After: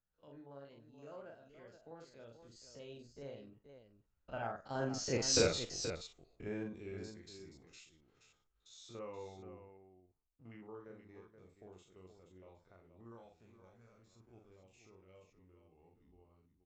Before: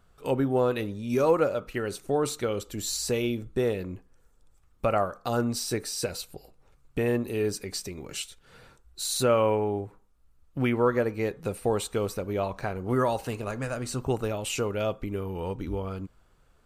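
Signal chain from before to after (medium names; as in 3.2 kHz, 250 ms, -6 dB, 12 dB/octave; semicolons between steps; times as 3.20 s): spectrogram pixelated in time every 50 ms; Doppler pass-by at 5.36 s, 37 m/s, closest 3.5 m; vibrato 10 Hz 15 cents; on a send: multi-tap echo 43/477 ms -4/-9 dB; on the sum: resampled via 16 kHz; trim +5 dB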